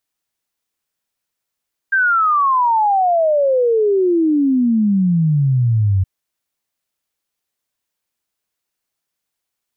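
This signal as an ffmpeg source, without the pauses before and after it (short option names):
-f lavfi -i "aevalsrc='0.266*clip(min(t,4.12-t)/0.01,0,1)*sin(2*PI*1600*4.12/log(92/1600)*(exp(log(92/1600)*t/4.12)-1))':d=4.12:s=44100"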